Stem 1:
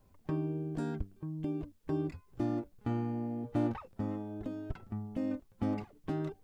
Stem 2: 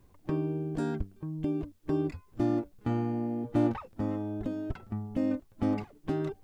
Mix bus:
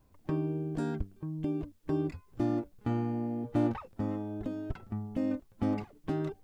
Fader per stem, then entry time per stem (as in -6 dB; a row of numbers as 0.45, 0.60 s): -2.0, -9.0 dB; 0.00, 0.00 s